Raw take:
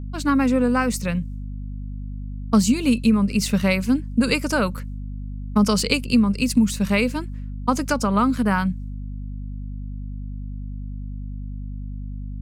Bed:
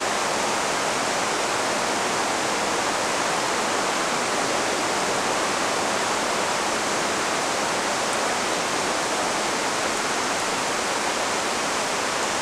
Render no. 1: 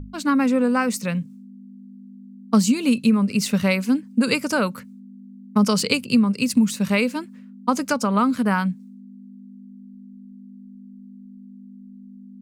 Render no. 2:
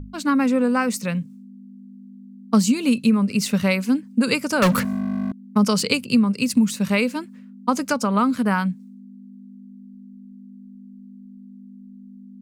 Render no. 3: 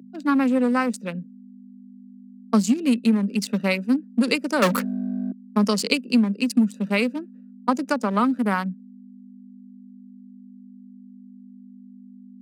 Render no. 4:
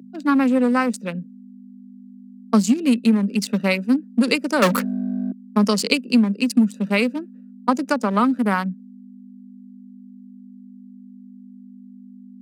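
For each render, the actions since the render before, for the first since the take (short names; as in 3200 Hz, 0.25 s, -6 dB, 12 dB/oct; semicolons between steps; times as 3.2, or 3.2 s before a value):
notches 50/100/150 Hz
4.62–5.32 sample leveller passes 5
Wiener smoothing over 41 samples; steep high-pass 200 Hz
gain +2.5 dB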